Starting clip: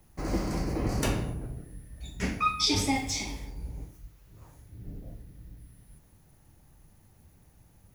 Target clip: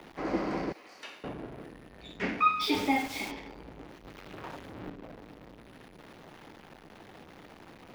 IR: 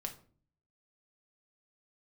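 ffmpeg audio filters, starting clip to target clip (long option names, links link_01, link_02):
-filter_complex "[0:a]aeval=exprs='val(0)+0.5*0.0106*sgn(val(0))':channel_layout=same,asettb=1/sr,asplit=3[link_01][link_02][link_03];[link_01]atrim=end=0.724[link_04];[link_02]atrim=start=0.72:end=1.24,asetpts=PTS-STARTPTS,afade=type=in:duration=0.004:curve=qsin,afade=type=out:start_time=0.516:duration=0.004:curve=qsin,aderivative[link_05];[link_03]atrim=start=1.236[link_06];[link_04][link_05]acrossfade=duration=0.004:curve1=hsin:curve2=qsin[link_07];[link_07][link_06]acrossfade=duration=0.004:curve1=qsin:curve2=hsin,acrossover=split=5200[link_08][link_09];[link_09]acompressor=threshold=-45dB:ratio=4:attack=1:release=60[link_10];[link_08][link_10]amix=inputs=2:normalize=0,acrossover=split=220 3900:gain=0.0891 1 0.0708[link_11][link_12][link_13];[link_11][link_12][link_13]amix=inputs=3:normalize=0,asplit=3[link_14][link_15][link_16];[link_14]afade=type=out:start_time=2.6:duration=0.02[link_17];[link_15]aeval=exprs='val(0)*gte(abs(val(0)),0.0106)':channel_layout=same,afade=type=in:start_time=2.6:duration=0.02,afade=type=out:start_time=3.3:duration=0.02[link_18];[link_16]afade=type=in:start_time=3.3:duration=0.02[link_19];[link_17][link_18][link_19]amix=inputs=3:normalize=0,asettb=1/sr,asplit=3[link_20][link_21][link_22];[link_20]atrim=end=4.044[link_23];[link_21]atrim=start=4.04:end=4.9,asetpts=PTS-STARTPTS,afade=type=in:duration=0.004:curve=qsin,afade=type=out:start_time=0.856:duration=0.004:curve=qsin,acontrast=33[link_24];[link_22]atrim=start=4.896[link_25];[link_23][link_24]acrossfade=duration=0.004:curve1=hsin:curve2=qsin[link_26];[link_26][link_25]acrossfade=duration=0.004:curve1=qsin:curve2=hsin,volume=2dB"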